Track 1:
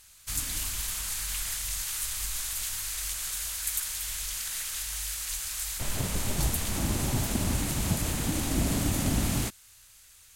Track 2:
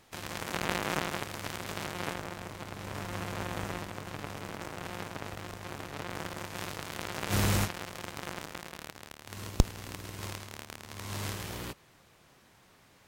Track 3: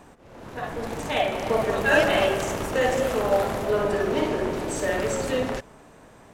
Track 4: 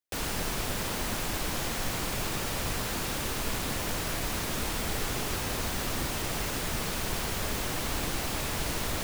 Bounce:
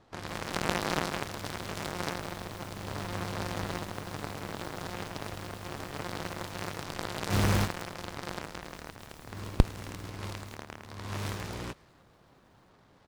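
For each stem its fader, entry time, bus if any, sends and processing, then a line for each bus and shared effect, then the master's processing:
-16.5 dB, 1.05 s, bus A, no send, echo send -23.5 dB, none
+2.0 dB, 0.00 s, no bus, no send, no echo send, level-controlled noise filter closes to 1.4 kHz, open at -30 dBFS; treble shelf 6.9 kHz -11 dB
mute
-19.0 dB, 0.15 s, bus A, no send, no echo send, none
bus A: 0.0 dB, compressor with a negative ratio -49 dBFS, ratio -1; peak limiter -41.5 dBFS, peak gain reduction 7.5 dB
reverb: none
echo: feedback delay 1078 ms, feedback 53%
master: delay time shaken by noise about 2.3 kHz, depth 0.06 ms

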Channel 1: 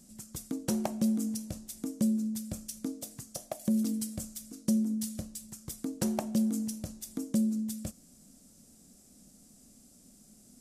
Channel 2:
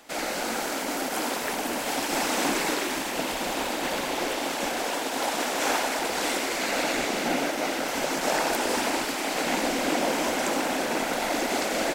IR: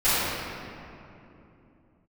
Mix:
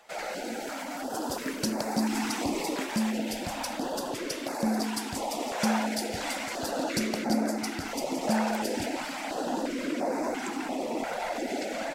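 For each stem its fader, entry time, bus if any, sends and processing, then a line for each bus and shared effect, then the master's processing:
-1.0 dB, 0.95 s, no send, peaking EQ 4.7 kHz +14.5 dB 0.49 oct
-3.5 dB, 0.00 s, no send, spectral contrast enhancement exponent 1.5; step-sequenced notch 2.9 Hz 280–3100 Hz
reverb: none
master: none

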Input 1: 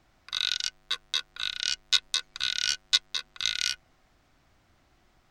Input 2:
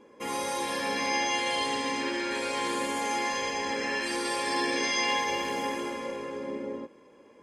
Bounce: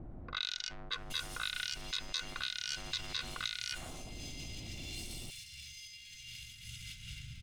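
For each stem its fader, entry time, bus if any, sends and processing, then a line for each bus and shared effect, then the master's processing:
-9.5 dB, 0.00 s, no send, level-controlled noise filter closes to 360 Hz, open at -23.5 dBFS; peak limiter -12 dBFS, peak gain reduction 8.5 dB; level flattener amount 70%
-2.5 dB, 0.90 s, no send, comb filter that takes the minimum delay 1.4 ms; compressor with a negative ratio -40 dBFS, ratio -1; Chebyshev band-stop 130–2800 Hz, order 3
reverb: none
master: peak limiter -22 dBFS, peak gain reduction 6 dB

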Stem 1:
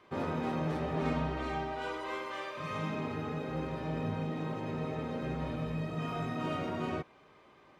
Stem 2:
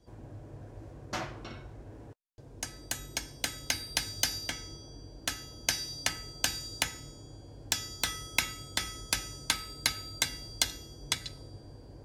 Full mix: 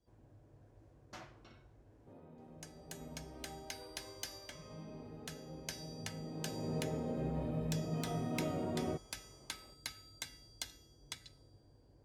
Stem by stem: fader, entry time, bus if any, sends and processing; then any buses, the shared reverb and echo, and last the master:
2.71 s -22 dB -> 3.44 s -13 dB -> 6.03 s -13 dB -> 6.72 s -1.5 dB, 1.95 s, no send, high-order bell 2.6 kHz -11 dB 3 oct
-15.5 dB, 0.00 s, no send, none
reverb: none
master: none

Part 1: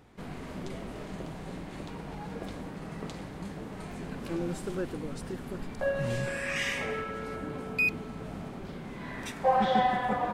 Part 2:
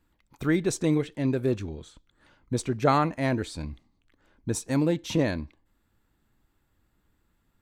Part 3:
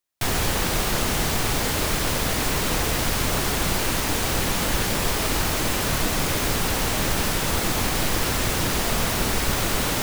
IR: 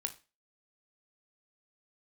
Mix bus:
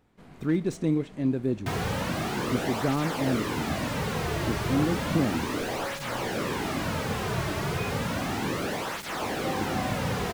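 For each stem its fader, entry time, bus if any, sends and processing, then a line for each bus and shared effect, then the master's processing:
-9.5 dB, 0.00 s, no send, none
-10.5 dB, 0.00 s, send -7 dB, peaking EQ 220 Hz +9.5 dB 1.5 oct
0.0 dB, 1.45 s, no send, high-pass 67 Hz; cancelling through-zero flanger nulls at 0.33 Hz, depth 4.2 ms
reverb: on, RT60 0.30 s, pre-delay 19 ms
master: slew-rate limiter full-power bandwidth 59 Hz

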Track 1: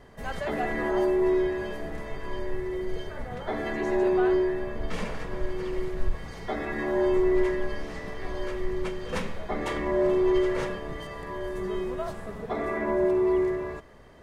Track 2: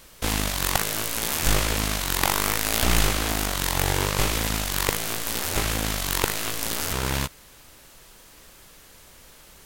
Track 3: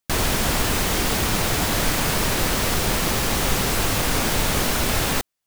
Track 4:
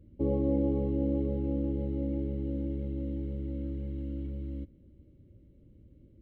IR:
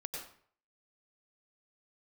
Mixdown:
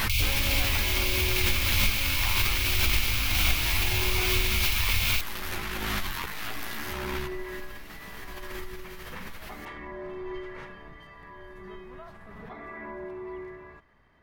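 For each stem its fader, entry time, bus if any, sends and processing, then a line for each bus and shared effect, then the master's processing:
-11.5 dB, 0.00 s, no send, none
+1.0 dB, 0.00 s, send -7.5 dB, compression 4:1, threshold -33 dBFS, peak gain reduction 15 dB; three-phase chorus
-2.5 dB, 0.00 s, no send, FFT band-reject 110–2100 Hz
-13.5 dB, 0.00 s, no send, high-order bell 820 Hz +12 dB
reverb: on, RT60 0.55 s, pre-delay 88 ms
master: graphic EQ 500/1000/2000/8000 Hz -8/+3/+5/-10 dB; swell ahead of each attack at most 21 dB/s

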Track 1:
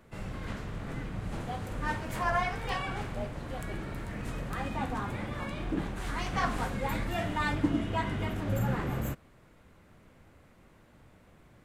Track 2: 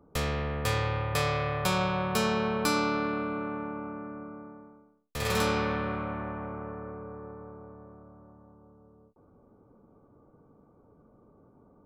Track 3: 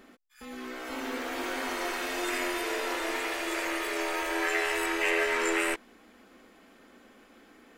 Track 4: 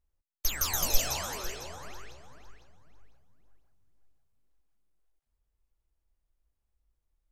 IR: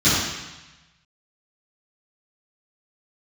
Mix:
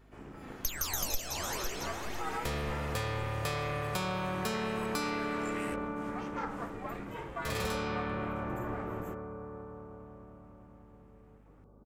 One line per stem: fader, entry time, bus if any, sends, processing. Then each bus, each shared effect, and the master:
-7.5 dB, 0.00 s, no send, fifteen-band graphic EQ 1 kHz +7 dB, 4 kHz -7 dB, 10 kHz -6 dB; ring modulator 240 Hz
-1.5 dB, 2.30 s, no send, none
-12.0 dB, 0.00 s, no send, none
+2.5 dB, 0.20 s, no send, none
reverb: none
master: hum 50 Hz, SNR 28 dB; compression 4:1, threshold -31 dBFS, peak gain reduction 15 dB

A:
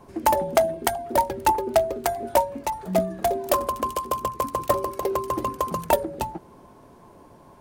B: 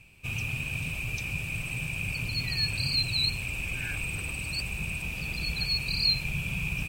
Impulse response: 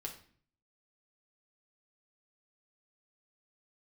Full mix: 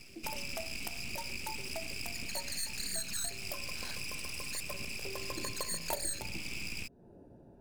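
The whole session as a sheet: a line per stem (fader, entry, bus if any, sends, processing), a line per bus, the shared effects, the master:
4.88 s -14.5 dB -> 5.41 s -2.5 dB, 0.00 s, no send, local Wiener filter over 41 samples; de-hum 52.19 Hz, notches 29
+0.5 dB, 0.00 s, no send, low-pass 7.1 kHz 12 dB/octave; full-wave rectifier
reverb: none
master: treble shelf 4.1 kHz +11 dB; compression 2.5:1, threshold -40 dBFS, peak gain reduction 16.5 dB

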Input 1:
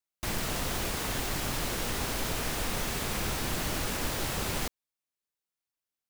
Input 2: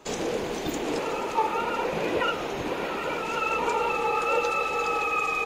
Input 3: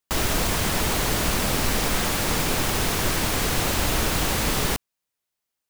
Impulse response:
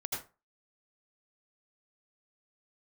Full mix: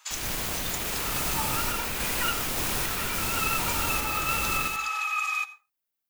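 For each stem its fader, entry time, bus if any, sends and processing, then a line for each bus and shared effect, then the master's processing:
+1.5 dB, 0.00 s, no send, peaking EQ 7.5 kHz -7.5 dB 1.7 oct; peak limiter -29 dBFS, peak gain reduction 9.5 dB
-3.0 dB, 0.00 s, send -15.5 dB, high-pass 1.1 kHz 24 dB/octave
-12.0 dB, 0.00 s, send -11 dB, random-step tremolo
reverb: on, RT60 0.30 s, pre-delay 73 ms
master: treble shelf 5.2 kHz +9.5 dB

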